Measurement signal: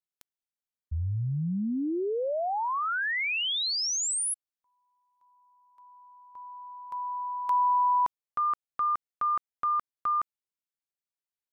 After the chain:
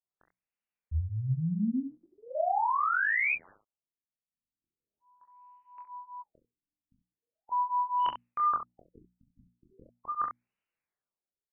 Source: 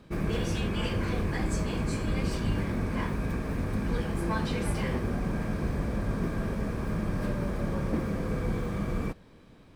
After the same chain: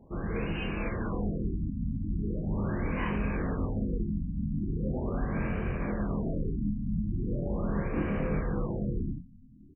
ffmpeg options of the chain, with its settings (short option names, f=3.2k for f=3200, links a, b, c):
-af "dynaudnorm=f=700:g=5:m=9.5dB,equalizer=f=2.7k:w=1.1:g=4.5,areverse,acompressor=threshold=-27dB:ratio=16:attack=19:release=411:knee=6:detection=peak,areverse,bandreject=f=60:t=h:w=6,bandreject=f=120:t=h:w=6,bandreject=f=180:t=h:w=6,bandreject=f=240:t=h:w=6,bandreject=f=300:t=h:w=6,flanger=delay=22.5:depth=3.1:speed=0.55,aresample=8000,asoftclip=type=hard:threshold=-26.5dB,aresample=44100,aecho=1:1:39|68:0.376|0.355,afftfilt=real='re*lt(b*sr/1024,270*pow(3100/270,0.5+0.5*sin(2*PI*0.4*pts/sr)))':imag='im*lt(b*sr/1024,270*pow(3100/270,0.5+0.5*sin(2*PI*0.4*pts/sr)))':win_size=1024:overlap=0.75,volume=3dB"